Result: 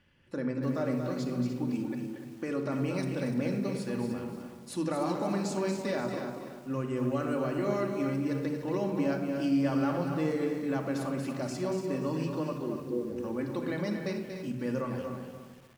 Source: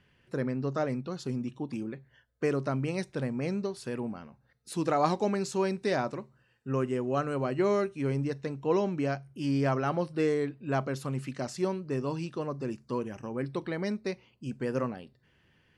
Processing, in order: 12.53–13.17 formant sharpening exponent 3; limiter -23 dBFS, peak gain reduction 11 dB; echo 0.233 s -7 dB; shoebox room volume 3800 m³, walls furnished, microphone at 2.4 m; lo-fi delay 0.294 s, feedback 35%, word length 8-bit, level -9.5 dB; gain -2.5 dB

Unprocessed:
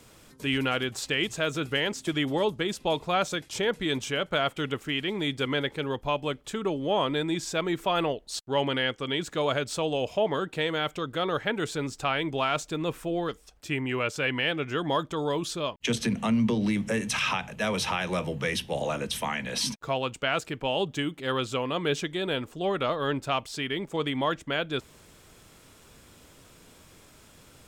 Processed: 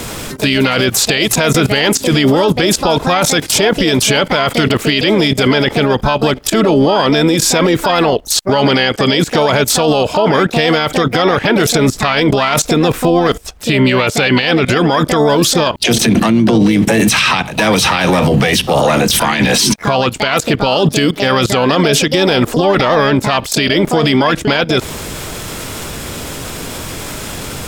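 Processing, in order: level quantiser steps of 19 dB; harmoniser +7 st -7 dB; maximiser +33.5 dB; gain -2 dB

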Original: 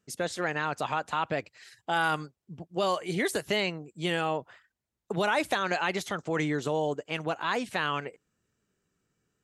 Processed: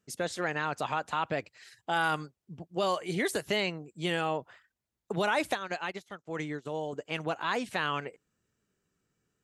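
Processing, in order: 5.53–6.93 upward expander 2.5:1, over -40 dBFS; gain -1.5 dB

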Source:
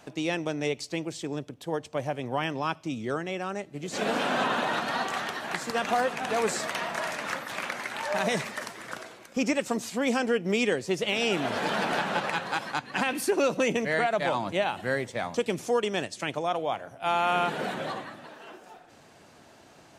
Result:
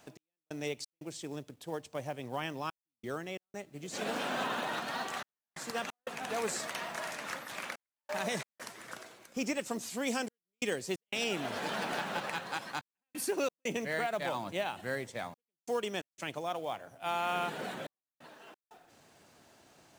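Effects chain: high shelf 5100 Hz +6 dB, from 9.9 s +12 dB, from 11.24 s +6 dB; companded quantiser 6-bit; step gate "x..xx.xxxxxxxxx" 89 bpm -60 dB; gain -8 dB

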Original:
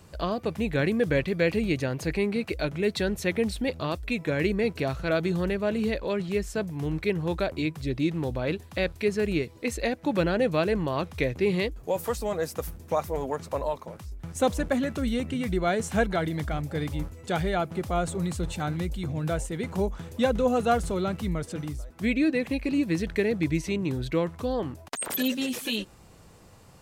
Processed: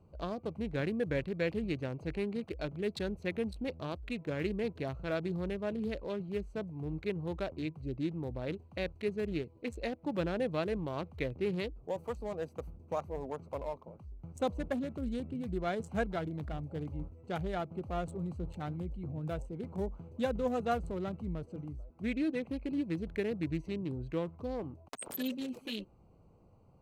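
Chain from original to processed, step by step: Wiener smoothing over 25 samples; gain -8.5 dB

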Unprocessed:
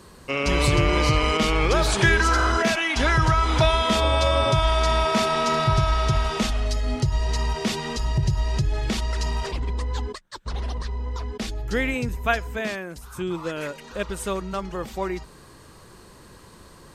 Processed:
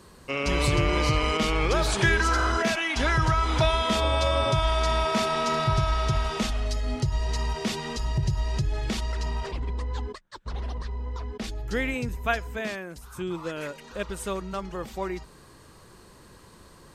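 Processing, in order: 9.12–11.44 high shelf 4300 Hz -7.5 dB; gain -3.5 dB

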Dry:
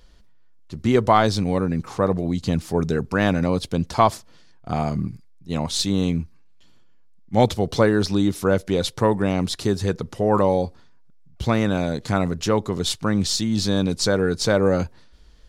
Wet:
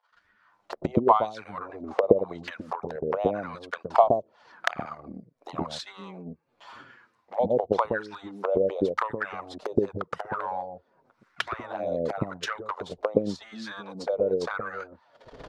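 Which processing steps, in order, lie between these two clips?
recorder AGC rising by 47 dB/s; transient shaper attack +12 dB, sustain -9 dB; wah 0.9 Hz 520–1600 Hz, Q 2.9; envelope flanger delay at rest 10.4 ms, full sweep at -19 dBFS; bands offset in time highs, lows 0.12 s, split 570 Hz; gain +1 dB

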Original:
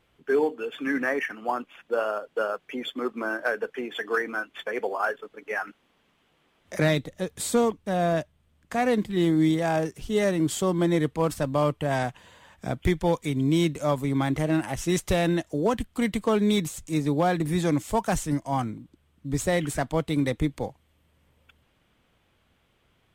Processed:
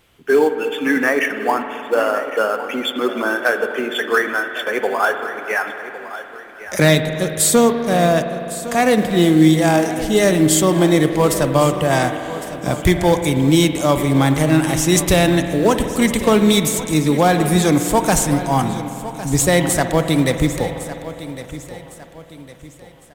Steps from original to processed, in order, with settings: high shelf 4300 Hz +9.5 dB; in parallel at -9.5 dB: short-mantissa float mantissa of 2-bit; on the sum: feedback echo 1.107 s, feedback 38%, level -14.5 dB; spring tank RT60 3.1 s, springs 51 ms, chirp 75 ms, DRR 7.5 dB; gain +6 dB

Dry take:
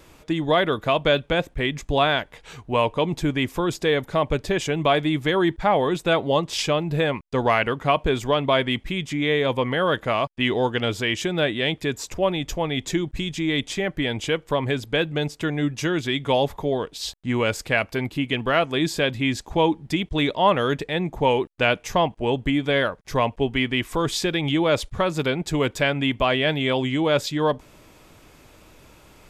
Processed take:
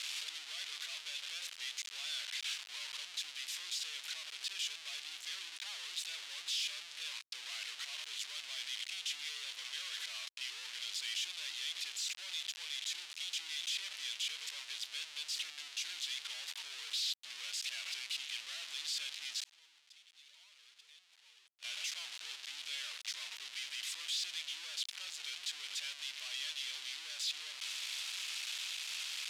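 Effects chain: infinite clipping; 19.44–21.63 expander -9 dBFS; limiter -33.5 dBFS, peak gain reduction 24 dB; ladder band-pass 4100 Hz, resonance 30%; gain +9 dB

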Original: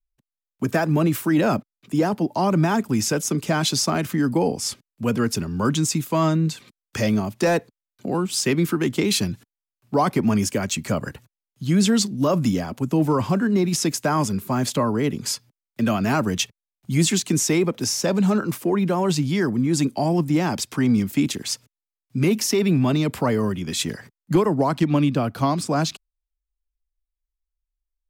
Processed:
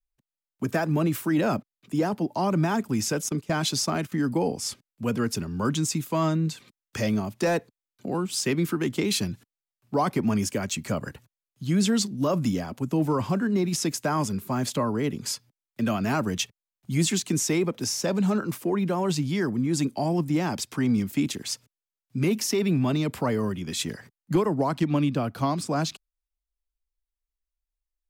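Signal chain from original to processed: 3.29–4.12 gate -24 dBFS, range -15 dB; gain -4.5 dB

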